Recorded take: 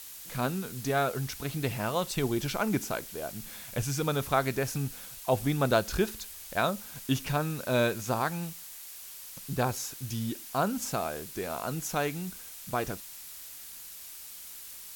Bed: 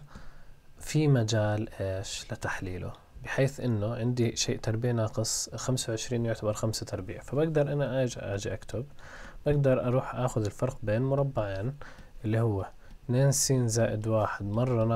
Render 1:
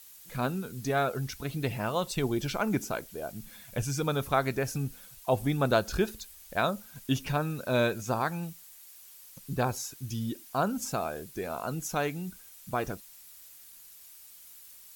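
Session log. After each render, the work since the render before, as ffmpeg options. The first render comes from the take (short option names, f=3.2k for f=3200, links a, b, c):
-af "afftdn=nr=9:nf=-45"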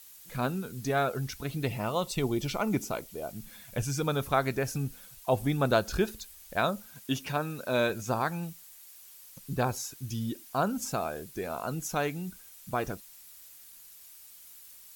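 -filter_complex "[0:a]asettb=1/sr,asplit=3[a][b][c];[a]atrim=end=1.664[d];[b]atrim=start=1.66:end=3.31,asetpts=PTS-STARTPTS,afade=t=in:d=0.004:c=qsin,afade=t=out:st=1.646:d=0.004:c=qsin,bandreject=f=1.6k:w=5.2[e];[c]atrim=start=3.306[f];[d][e]acrossfade=d=0.004:c1=hsin:c2=qsin[g];[g][f]acrossfade=d=0.004:c1=qsin:c2=hsin,asettb=1/sr,asplit=3[h][i][j];[h]atrim=end=6.934[k];[i]atrim=start=6.93:end=7.9,asetpts=PTS-STARTPTS,afade=t=in:d=0.004:c=qsin,afade=t=out:st=0.966:d=0.004:c=qsin,highpass=f=210:p=1[l];[j]atrim=start=7.896[m];[k][l]acrossfade=d=0.004:c1=hsin:c2=qsin[n];[n][m]acrossfade=d=0.004:c1=qsin:c2=hsin"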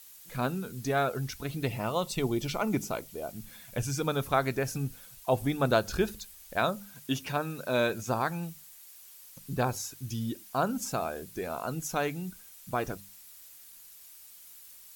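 -af "bandreject=f=50:t=h:w=6,bandreject=f=100:t=h:w=6,bandreject=f=150:t=h:w=6,bandreject=f=200:t=h:w=6"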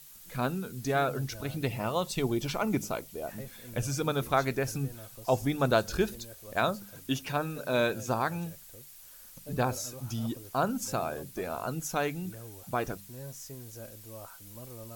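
-filter_complex "[1:a]volume=-19.5dB[a];[0:a][a]amix=inputs=2:normalize=0"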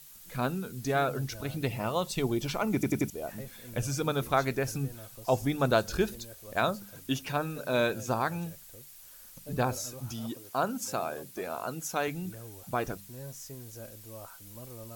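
-filter_complex "[0:a]asettb=1/sr,asplit=3[a][b][c];[a]atrim=end=10.124[d];[b]atrim=start=10.12:end=12.08,asetpts=PTS-STARTPTS,afade=t=in:d=0.004:c=qsin,afade=t=out:st=1.956:d=0.004:c=qsin,highpass=f=240:p=1[e];[c]atrim=start=12.076[f];[d][e]acrossfade=d=0.004:c1=hsin:c2=qsin[g];[g][f]acrossfade=d=0.004:c1=qsin:c2=hsin,asplit=5[h][i][j][k][l];[h]atrim=end=2.832[m];[i]atrim=start=2.738:end=2.832[n];[j]atrim=start=2.738:end=2.832[o];[k]atrim=start=2.738:end=2.832[p];[l]atrim=start=3.098[q];[m][n]acrossfade=d=0.004:c1=hsin:c2=hsin[r];[r][o]acrossfade=d=0.004:c1=hsin:c2=hsin[s];[s][p]acrossfade=d=0.004:c1=hsin:c2=hsin[t];[t][q]acrossfade=d=0.004:c1=hsin:c2=hsin"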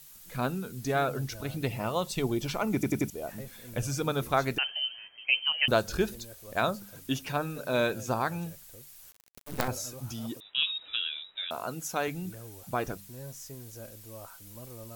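-filter_complex "[0:a]asettb=1/sr,asplit=3[a][b][c];[a]atrim=end=4.584[d];[b]atrim=start=4.58:end=5.68,asetpts=PTS-STARTPTS,afade=t=in:d=0.004:c=qsin,afade=t=out:st=1.096:d=0.004:c=qsin,lowpass=f=2.7k:t=q:w=0.5098,lowpass=f=2.7k:t=q:w=0.6013,lowpass=f=2.7k:t=q:w=0.9,lowpass=f=2.7k:t=q:w=2.563,afreqshift=-3200[e];[c]atrim=start=5.676[f];[d][e]acrossfade=d=0.004:c1=hsin:c2=qsin[g];[g][f]acrossfade=d=0.004:c1=qsin:c2=hsin,asettb=1/sr,asplit=3[h][i][j];[h]atrim=end=9.114[k];[i]atrim=start=9.11:end=9.68,asetpts=PTS-STARTPTS,afade=t=in:d=0.004:c=qsin,afade=t=out:st=0.566:d=0.004:c=qsin,acrusher=bits=4:dc=4:mix=0:aa=0.000001[l];[j]atrim=start=9.676[m];[k][l]acrossfade=d=0.004:c1=hsin:c2=qsin[n];[n][m]acrossfade=d=0.004:c1=qsin:c2=hsin,asettb=1/sr,asplit=3[o][p][q];[o]atrim=end=10.404[r];[p]atrim=start=10.4:end=11.51,asetpts=PTS-STARTPTS,afade=t=in:d=0.004:c=qsin,afade=t=out:st=1.106:d=0.004:c=qsin,lowpass=f=3.4k:t=q:w=0.5098,lowpass=f=3.4k:t=q:w=0.6013,lowpass=f=3.4k:t=q:w=0.9,lowpass=f=3.4k:t=q:w=2.563,afreqshift=-4000[s];[q]atrim=start=11.506[t];[r][s]acrossfade=d=0.004:c1=hsin:c2=qsin[u];[u][t]acrossfade=d=0.004:c1=qsin:c2=hsin"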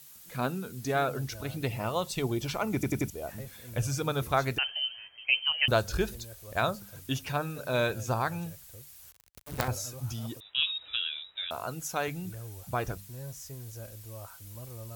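-af "highpass=67,asubboost=boost=6:cutoff=86"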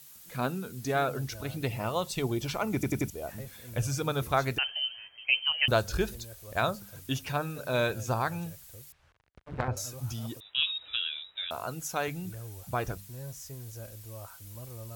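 -filter_complex "[0:a]asettb=1/sr,asplit=3[a][b][c];[a]atrim=end=8.924[d];[b]atrim=start=8.92:end=9.77,asetpts=PTS-STARTPTS,afade=t=in:d=0.004:c=qsin,afade=t=out:st=0.846:d=0.004:c=qsin,lowpass=2k[e];[c]atrim=start=9.766[f];[d][e]acrossfade=d=0.004:c1=hsin:c2=qsin[g];[g][f]acrossfade=d=0.004:c1=qsin:c2=hsin"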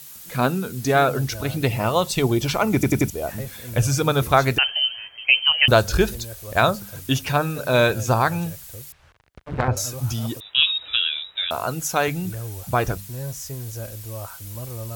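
-af "volume=10.5dB,alimiter=limit=-3dB:level=0:latency=1"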